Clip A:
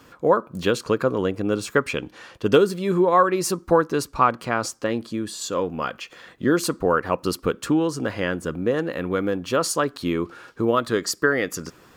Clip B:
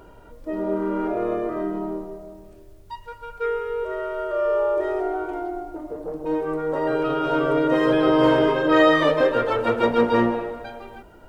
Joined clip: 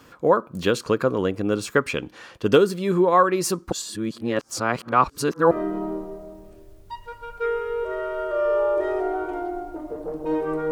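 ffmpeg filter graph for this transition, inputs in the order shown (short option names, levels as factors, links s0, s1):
-filter_complex "[0:a]apad=whole_dur=10.71,atrim=end=10.71,asplit=2[s0][s1];[s0]atrim=end=3.722[s2];[s1]atrim=start=3.718:end=5.512,asetpts=PTS-STARTPTS,areverse[s3];[1:a]atrim=start=1.508:end=6.71[s4];[s2][s3]acrossfade=d=0.004:c1=hsin:c2=hsin[s5];[s5][s4]acrossfade=d=0.004:c1=hsin:c2=hsin"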